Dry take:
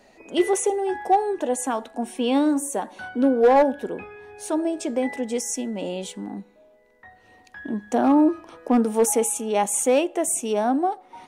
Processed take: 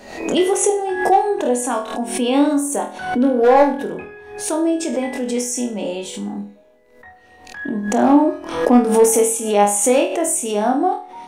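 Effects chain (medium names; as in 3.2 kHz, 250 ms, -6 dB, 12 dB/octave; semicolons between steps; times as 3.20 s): flutter echo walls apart 4.2 m, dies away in 0.37 s; swell ahead of each attack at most 78 dB/s; trim +2.5 dB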